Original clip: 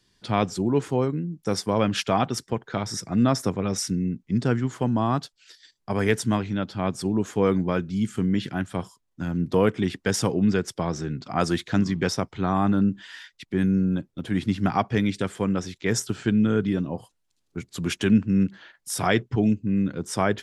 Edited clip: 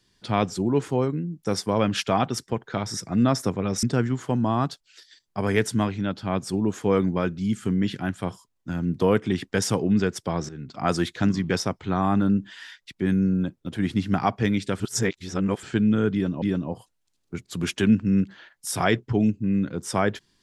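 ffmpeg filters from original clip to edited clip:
-filter_complex "[0:a]asplit=6[s0][s1][s2][s3][s4][s5];[s0]atrim=end=3.832[s6];[s1]atrim=start=4.348:end=11.01,asetpts=PTS-STARTPTS,afade=t=out:st=6.658:d=0.004:c=hsin:silence=0.223872[s7];[s2]atrim=start=11.01:end=15.322,asetpts=PTS-STARTPTS,afade=t=in:d=0.35:silence=0.223872[s8];[s3]atrim=start=15.318:end=16.152,asetpts=PTS-STARTPTS,areverse[s9];[s4]atrim=start=16.148:end=16.942[s10];[s5]atrim=start=16.648[s11];[s7][s8]concat=n=2:v=0:a=1[s12];[s6][s12]acrossfade=d=0.004:c1=hsin:c2=hsin[s13];[s13][s9]acrossfade=d=0.004:c1=hsin:c2=hsin[s14];[s14][s10]acrossfade=d=0.004:c1=hsin:c2=hsin[s15];[s15][s11]acrossfade=d=0.004:c1=hsin:c2=hsin"

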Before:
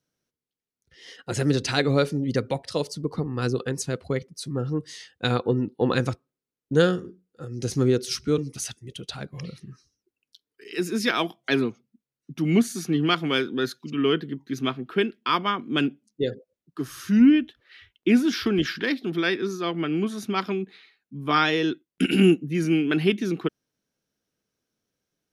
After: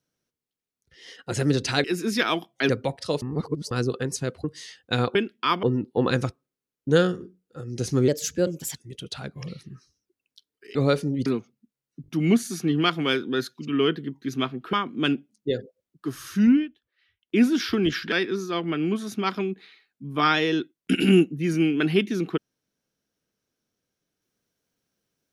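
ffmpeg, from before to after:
-filter_complex "[0:a]asplit=19[s0][s1][s2][s3][s4][s5][s6][s7][s8][s9][s10][s11][s12][s13][s14][s15][s16][s17][s18];[s0]atrim=end=1.842[s19];[s1]atrim=start=10.718:end=11.572[s20];[s2]atrim=start=2.348:end=2.882[s21];[s3]atrim=start=2.878:end=3.372,asetpts=PTS-STARTPTS,areverse[s22];[s4]atrim=start=3.368:end=4.102[s23];[s5]atrim=start=4.758:end=5.472[s24];[s6]atrim=start=14.978:end=15.462[s25];[s7]atrim=start=5.468:end=7.924[s26];[s8]atrim=start=7.92:end=8.73,asetpts=PTS-STARTPTS,asetrate=52479,aresample=44100[s27];[s9]atrim=start=8.726:end=10.722[s28];[s10]atrim=start=1.838:end=2.352[s29];[s11]atrim=start=11.568:end=12.352[s30];[s12]atrim=start=12.328:end=12.352[s31];[s13]atrim=start=12.328:end=12.352[s32];[s14]atrim=start=12.328:end=14.982[s33];[s15]atrim=start=15.458:end=17.42,asetpts=PTS-STARTPTS,afade=t=out:st=1.722:d=0.24:silence=0.125893[s34];[s16]atrim=start=17.42:end=17.9,asetpts=PTS-STARTPTS,volume=0.126[s35];[s17]atrim=start=17.9:end=18.852,asetpts=PTS-STARTPTS,afade=t=in:d=0.24:silence=0.125893[s36];[s18]atrim=start=19.228[s37];[s19][s20]acrossfade=d=0.004:c1=hsin:c2=hsin[s38];[s38][s21]acrossfade=d=0.004:c1=hsin:c2=hsin[s39];[s39][s22]acrossfade=d=0.004:c1=hsin:c2=hsin[s40];[s40][s23]acrossfade=d=0.004:c1=hsin:c2=hsin[s41];[s41][s24]acrossfade=d=0.004:c1=hsin:c2=hsin[s42];[s42][s25]acrossfade=d=0.004:c1=hsin:c2=hsin[s43];[s43][s26]acrossfade=d=0.004:c1=hsin:c2=hsin[s44];[s44][s27]acrossfade=d=0.004:c1=hsin:c2=hsin[s45];[s45][s28]acrossfade=d=0.004:c1=hsin:c2=hsin[s46];[s46][s29]acrossfade=d=0.004:c1=hsin:c2=hsin[s47];[s47][s30]acrossfade=d=0.004:c1=hsin:c2=hsin[s48];[s48][s31]acrossfade=d=0.004:c1=hsin:c2=hsin[s49];[s49][s32]acrossfade=d=0.004:c1=hsin:c2=hsin[s50];[s50][s33]acrossfade=d=0.004:c1=hsin:c2=hsin[s51];[s34][s35][s36]concat=n=3:v=0:a=1[s52];[s51][s52]acrossfade=d=0.004:c1=hsin:c2=hsin[s53];[s53][s37]acrossfade=d=0.004:c1=hsin:c2=hsin"

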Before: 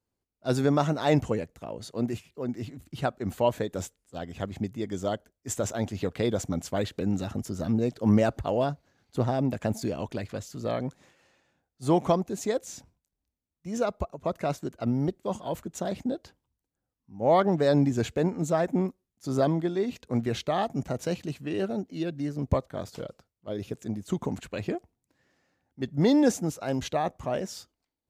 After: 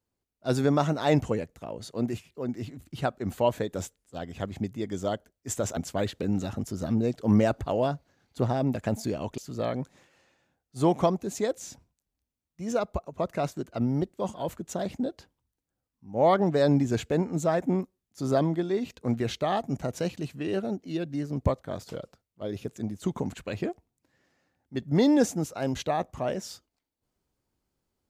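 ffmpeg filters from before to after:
-filter_complex "[0:a]asplit=3[s0][s1][s2];[s0]atrim=end=5.772[s3];[s1]atrim=start=6.548:end=10.162[s4];[s2]atrim=start=10.438[s5];[s3][s4]acrossfade=d=0.004:c1=hsin:c2=hsin[s6];[s6][s5]acrossfade=d=0.004:c1=hsin:c2=hsin"

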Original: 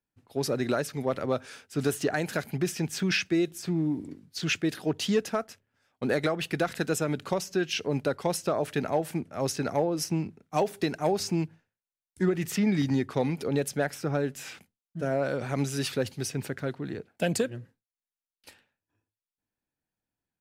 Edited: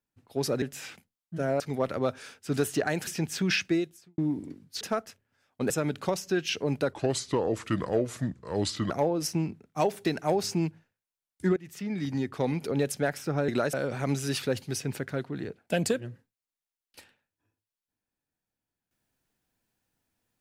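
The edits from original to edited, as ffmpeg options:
-filter_complex "[0:a]asplit=12[s0][s1][s2][s3][s4][s5][s6][s7][s8][s9][s10][s11];[s0]atrim=end=0.622[s12];[s1]atrim=start=14.248:end=15.232[s13];[s2]atrim=start=0.868:end=2.342[s14];[s3]atrim=start=2.678:end=3.79,asetpts=PTS-STARTPTS,afade=t=out:st=0.662:d=0.45:c=qua[s15];[s4]atrim=start=3.79:end=4.422,asetpts=PTS-STARTPTS,afade=t=in:d=0.004:c=hsin[s16];[s5]atrim=start=5.228:end=6.122[s17];[s6]atrim=start=6.938:end=8.174[s18];[s7]atrim=start=8.17:end=9.67,asetpts=PTS-STARTPTS,asetrate=33516,aresample=44100,atrim=end_sample=87039,asetpts=PTS-STARTPTS[s19];[s8]atrim=start=9.666:end=12.33,asetpts=PTS-STARTPTS,afade=t=out:st=2.66:d=0.004:c=hsin:silence=0.105925[s20];[s9]atrim=start=12.33:end=14.252,asetpts=PTS-STARTPTS,afade=t=in:d=1.04:silence=0.105925[s21];[s10]atrim=start=0.618:end=0.872[s22];[s11]atrim=start=15.228[s23];[s12][s13]acrossfade=d=0.004:c1=hsin:c2=hsin[s24];[s24][s14]acrossfade=d=0.004:c1=hsin:c2=hsin[s25];[s15][s16]concat=n=2:v=0:a=1[s26];[s25][s26]acrossfade=d=0.004:c1=hsin:c2=hsin[s27];[s27][s17]acrossfade=d=0.004:c1=hsin:c2=hsin[s28];[s28][s18]acrossfade=d=0.004:c1=hsin:c2=hsin[s29];[s29][s19]acrossfade=d=0.004:c1=hsin:c2=hsin[s30];[s20][s21]concat=n=2:v=0:a=1[s31];[s30][s31]acrossfade=d=0.004:c1=hsin:c2=hsin[s32];[s32][s22]acrossfade=d=0.004:c1=hsin:c2=hsin[s33];[s33][s23]acrossfade=d=0.004:c1=hsin:c2=hsin"

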